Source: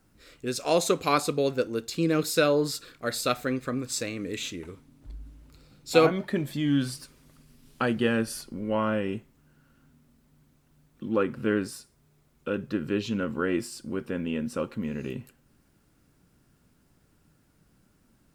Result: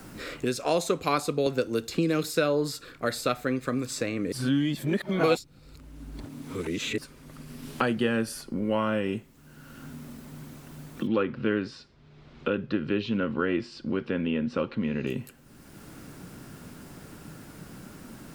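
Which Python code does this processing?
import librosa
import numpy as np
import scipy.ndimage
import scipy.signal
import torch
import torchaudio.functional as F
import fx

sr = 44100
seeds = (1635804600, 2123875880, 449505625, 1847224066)

y = fx.band_squash(x, sr, depth_pct=70, at=(1.46, 2.3))
y = fx.lowpass(y, sr, hz=4200.0, slope=24, at=(11.07, 15.07))
y = fx.edit(y, sr, fx.reverse_span(start_s=4.32, length_s=2.66), tone=tone)
y = fx.band_squash(y, sr, depth_pct=70)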